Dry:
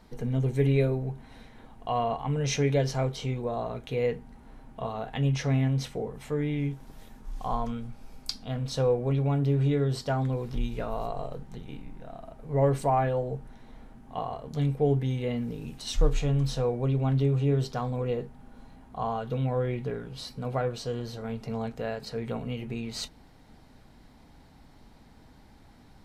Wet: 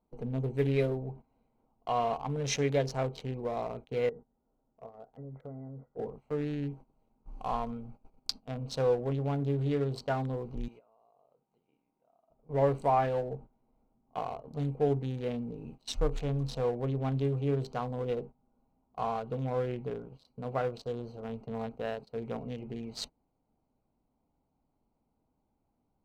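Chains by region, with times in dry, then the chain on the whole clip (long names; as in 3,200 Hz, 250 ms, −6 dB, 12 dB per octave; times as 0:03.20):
0:04.09–0:05.99: Chebyshev low-pass with heavy ripple 2,000 Hz, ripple 6 dB + downward compressor 5 to 1, threshold −35 dBFS
0:10.68–0:12.30: high-pass filter 940 Hz 6 dB per octave + downward compressor 4 to 1, threshold −42 dBFS
whole clip: adaptive Wiener filter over 25 samples; noise gate −40 dBFS, range −17 dB; low-shelf EQ 240 Hz −9 dB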